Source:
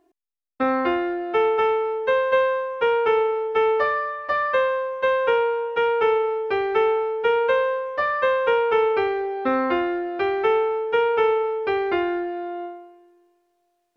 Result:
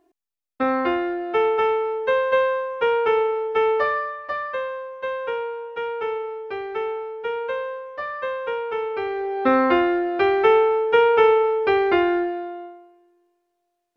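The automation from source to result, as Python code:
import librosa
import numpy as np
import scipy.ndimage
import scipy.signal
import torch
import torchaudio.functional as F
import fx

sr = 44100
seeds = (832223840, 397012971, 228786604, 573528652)

y = fx.gain(x, sr, db=fx.line((3.97, 0.0), (4.54, -7.0), (8.9, -7.0), (9.46, 4.0), (12.23, 4.0), (12.64, -5.0)))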